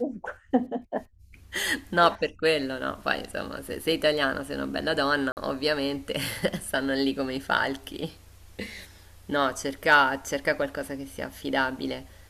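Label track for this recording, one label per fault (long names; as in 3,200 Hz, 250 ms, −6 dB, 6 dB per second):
5.320000	5.370000	drop-out 49 ms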